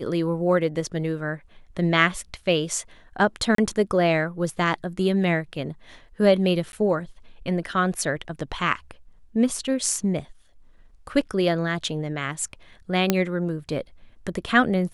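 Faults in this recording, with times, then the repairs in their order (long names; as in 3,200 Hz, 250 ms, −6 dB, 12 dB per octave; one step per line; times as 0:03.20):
0:03.55–0:03.58: drop-out 33 ms
0:06.72–0:06.73: drop-out 11 ms
0:13.10: click −4 dBFS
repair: click removal
repair the gap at 0:03.55, 33 ms
repair the gap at 0:06.72, 11 ms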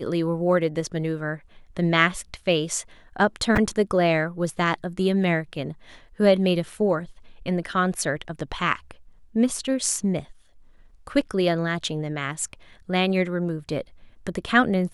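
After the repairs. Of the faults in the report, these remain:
none of them is left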